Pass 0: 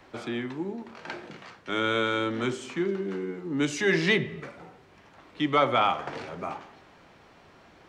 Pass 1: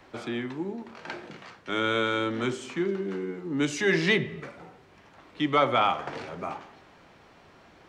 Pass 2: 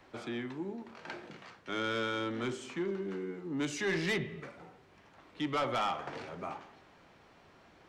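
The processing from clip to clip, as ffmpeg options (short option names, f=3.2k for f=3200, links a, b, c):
-af anull
-af "asoftclip=type=tanh:threshold=-21dB,volume=-5.5dB"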